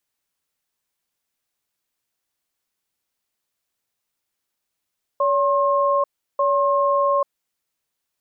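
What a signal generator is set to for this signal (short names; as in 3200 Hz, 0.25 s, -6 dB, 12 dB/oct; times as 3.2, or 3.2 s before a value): cadence 567 Hz, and 1070 Hz, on 0.84 s, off 0.35 s, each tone -18.5 dBFS 2.30 s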